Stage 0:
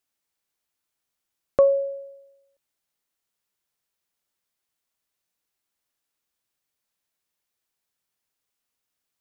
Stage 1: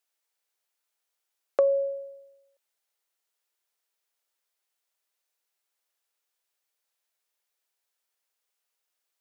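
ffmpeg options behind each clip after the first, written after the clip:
ffmpeg -i in.wav -af "highpass=frequency=400:width=0.5412,highpass=frequency=400:width=1.3066,bandreject=frequency=1100:width=26,acompressor=threshold=-20dB:ratio=3" out.wav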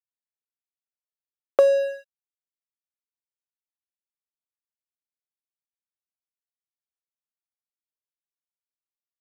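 ffmpeg -i in.wav -af "aeval=exprs='sgn(val(0))*max(abs(val(0))-0.0133,0)':channel_layout=same,volume=6.5dB" out.wav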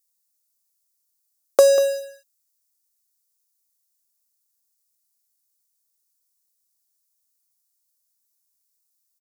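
ffmpeg -i in.wav -af "aexciter=amount=5.9:drive=7.2:freq=4300,aecho=1:1:192:0.211,volume=3dB" out.wav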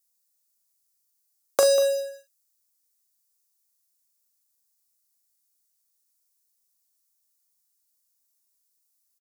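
ffmpeg -i in.wav -filter_complex "[0:a]acrossover=split=780|2000|3400[link_01][link_02][link_03][link_04];[link_01]acompressor=threshold=-25dB:ratio=6[link_05];[link_05][link_02][link_03][link_04]amix=inputs=4:normalize=0,flanger=delay=9.5:depth=1.1:regen=-75:speed=0.27:shape=triangular,asplit=2[link_06][link_07];[link_07]adelay=40,volume=-8.5dB[link_08];[link_06][link_08]amix=inputs=2:normalize=0,volume=4dB" out.wav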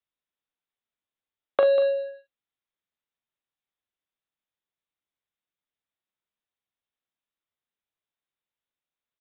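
ffmpeg -i in.wav -af "aresample=8000,aresample=44100" out.wav

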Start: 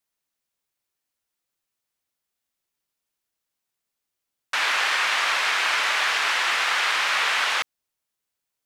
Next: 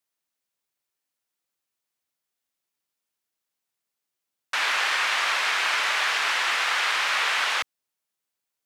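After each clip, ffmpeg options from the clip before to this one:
ffmpeg -i in.wav -af "highpass=frequency=140:poles=1,volume=-1.5dB" out.wav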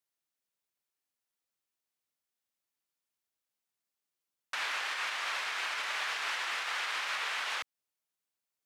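ffmpeg -i in.wav -af "alimiter=limit=-20dB:level=0:latency=1:release=188,volume=-5.5dB" out.wav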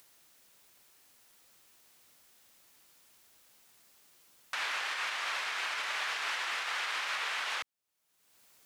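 ffmpeg -i in.wav -af "acompressor=mode=upward:threshold=-42dB:ratio=2.5" out.wav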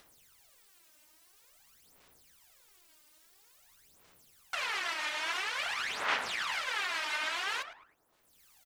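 ffmpeg -i in.wav -filter_complex "[0:a]asplit=2[link_01][link_02];[link_02]adelay=107,lowpass=frequency=1400:poles=1,volume=-8.5dB,asplit=2[link_03][link_04];[link_04]adelay=107,lowpass=frequency=1400:poles=1,volume=0.49,asplit=2[link_05][link_06];[link_06]adelay=107,lowpass=frequency=1400:poles=1,volume=0.49,asplit=2[link_07][link_08];[link_08]adelay=107,lowpass=frequency=1400:poles=1,volume=0.49,asplit=2[link_09][link_10];[link_10]adelay=107,lowpass=frequency=1400:poles=1,volume=0.49,asplit=2[link_11][link_12];[link_12]adelay=107,lowpass=frequency=1400:poles=1,volume=0.49[link_13];[link_01][link_03][link_05][link_07][link_09][link_11][link_13]amix=inputs=7:normalize=0,aeval=exprs='val(0)*sin(2*PI*190*n/s)':channel_layout=same,aphaser=in_gain=1:out_gain=1:delay=3.3:decay=0.72:speed=0.49:type=sinusoidal" out.wav

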